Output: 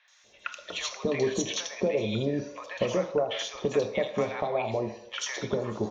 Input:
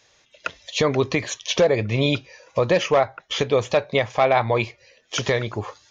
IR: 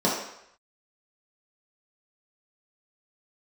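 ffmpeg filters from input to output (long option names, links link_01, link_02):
-filter_complex "[0:a]acompressor=threshold=-27dB:ratio=5,acrossover=split=980|3200[link_01][link_02][link_03];[link_03]adelay=80[link_04];[link_01]adelay=240[link_05];[link_05][link_02][link_04]amix=inputs=3:normalize=0,asplit=2[link_06][link_07];[1:a]atrim=start_sample=2205,highshelf=frequency=5200:gain=7.5[link_08];[link_07][link_08]afir=irnorm=-1:irlink=0,volume=-19.5dB[link_09];[link_06][link_09]amix=inputs=2:normalize=0,volume=-1dB"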